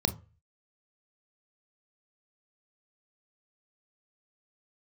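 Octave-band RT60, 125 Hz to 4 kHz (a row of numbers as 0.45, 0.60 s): 0.50, 0.30, 0.35, 0.35, 0.35, 0.20 s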